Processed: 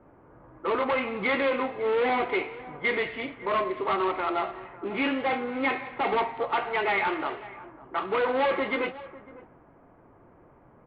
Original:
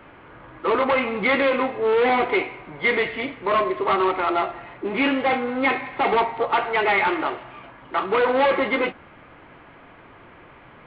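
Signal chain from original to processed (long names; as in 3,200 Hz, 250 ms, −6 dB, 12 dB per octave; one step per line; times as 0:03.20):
single-tap delay 550 ms −18 dB
low-pass that shuts in the quiet parts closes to 680 Hz, open at −20.5 dBFS
level −6 dB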